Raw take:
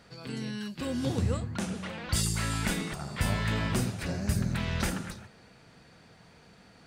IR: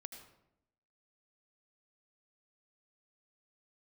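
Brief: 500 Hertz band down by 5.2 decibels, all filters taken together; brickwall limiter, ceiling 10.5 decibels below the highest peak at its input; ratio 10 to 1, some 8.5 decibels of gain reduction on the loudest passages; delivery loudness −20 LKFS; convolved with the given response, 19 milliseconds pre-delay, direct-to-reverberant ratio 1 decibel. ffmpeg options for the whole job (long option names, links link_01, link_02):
-filter_complex "[0:a]equalizer=frequency=500:width_type=o:gain=-6.5,acompressor=threshold=-32dB:ratio=10,alimiter=level_in=8dB:limit=-24dB:level=0:latency=1,volume=-8dB,asplit=2[link_01][link_02];[1:a]atrim=start_sample=2205,adelay=19[link_03];[link_02][link_03]afir=irnorm=-1:irlink=0,volume=3.5dB[link_04];[link_01][link_04]amix=inputs=2:normalize=0,volume=18.5dB"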